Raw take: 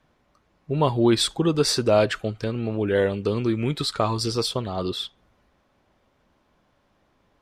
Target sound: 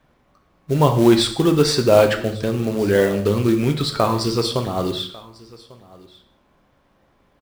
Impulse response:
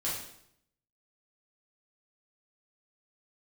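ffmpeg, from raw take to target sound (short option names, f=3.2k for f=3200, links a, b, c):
-filter_complex "[0:a]highshelf=f=4.5k:g=-6.5,acrusher=bits=5:mode=log:mix=0:aa=0.000001,aecho=1:1:1147:0.075,asplit=2[a][b];[1:a]atrim=start_sample=2205,afade=t=out:st=0.27:d=0.01,atrim=end_sample=12348[c];[b][c]afir=irnorm=-1:irlink=0,volume=-8.5dB[d];[a][d]amix=inputs=2:normalize=0,volume=2.5dB"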